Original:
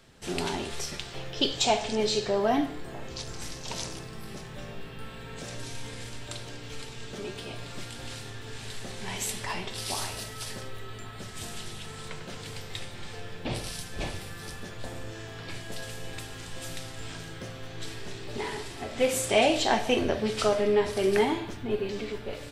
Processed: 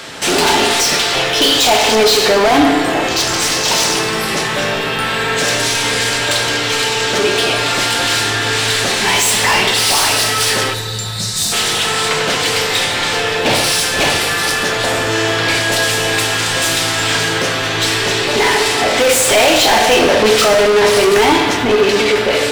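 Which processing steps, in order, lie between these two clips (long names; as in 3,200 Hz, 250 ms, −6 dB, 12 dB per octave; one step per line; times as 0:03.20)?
gain on a spectral selection 0:10.73–0:11.52, 220–3,500 Hz −15 dB
mid-hump overdrive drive 34 dB, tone 7,700 Hz, clips at −8 dBFS
feedback delay network reverb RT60 1.8 s, low-frequency decay 0.7×, high-frequency decay 0.6×, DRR 6 dB
level +3 dB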